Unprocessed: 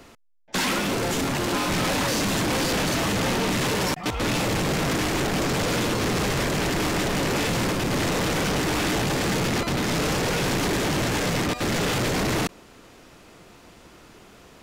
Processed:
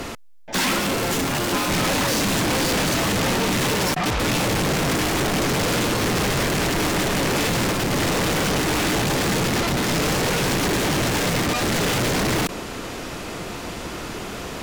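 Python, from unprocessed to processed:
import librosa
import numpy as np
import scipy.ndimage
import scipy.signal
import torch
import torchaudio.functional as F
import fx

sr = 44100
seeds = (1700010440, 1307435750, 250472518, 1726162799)

p1 = fx.over_compress(x, sr, threshold_db=-32.0, ratio=-1.0)
p2 = x + F.gain(torch.from_numpy(p1), 1.5).numpy()
p3 = fx.fold_sine(p2, sr, drive_db=9, ceiling_db=-12.5)
y = F.gain(torch.from_numpy(p3), -7.0).numpy()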